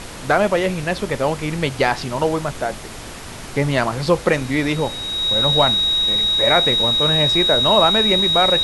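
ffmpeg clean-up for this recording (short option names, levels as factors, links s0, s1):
-af "bandreject=f=3800:w=30,afftdn=nr=30:nf=-33"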